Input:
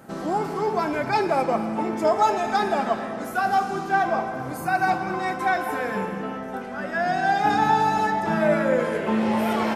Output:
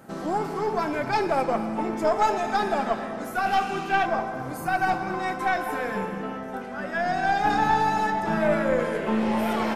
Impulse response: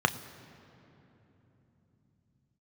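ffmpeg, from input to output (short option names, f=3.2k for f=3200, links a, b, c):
-filter_complex "[0:a]asettb=1/sr,asplit=3[a][b][c];[a]atrim=end=3.464[d];[b]atrim=start=3.46:end=4.06,asetpts=PTS-STARTPTS,afade=t=in:d=0.004:c=qsin,afade=t=out:st=0.596:d=0.004:c=qsin,equalizer=f=2.7k:w=2.3:g=14[e];[c]atrim=start=4.056[f];[d][e]acrossfade=d=0.004:c1=hsin:c2=qsin[g];[g][f]acrossfade=d=0.004:c1=qsin:c2=hsin,aeval=exprs='(tanh(3.55*val(0)+0.45)-tanh(0.45))/3.55':c=same"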